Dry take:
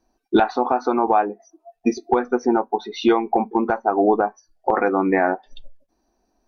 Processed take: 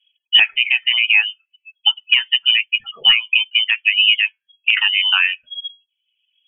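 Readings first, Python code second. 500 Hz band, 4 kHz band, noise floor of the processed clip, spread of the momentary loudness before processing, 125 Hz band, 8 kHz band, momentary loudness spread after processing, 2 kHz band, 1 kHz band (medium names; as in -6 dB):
under -30 dB, +27.5 dB, -80 dBFS, 7 LU, under -15 dB, no reading, 9 LU, +15.0 dB, -17.0 dB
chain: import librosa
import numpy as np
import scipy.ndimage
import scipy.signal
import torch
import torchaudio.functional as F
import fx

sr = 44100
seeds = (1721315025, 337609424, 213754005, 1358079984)

y = fx.dereverb_blind(x, sr, rt60_s=0.84)
y = fx.env_lowpass(y, sr, base_hz=660.0, full_db=-16.0)
y = fx.freq_invert(y, sr, carrier_hz=3300)
y = y * librosa.db_to_amplitude(4.0)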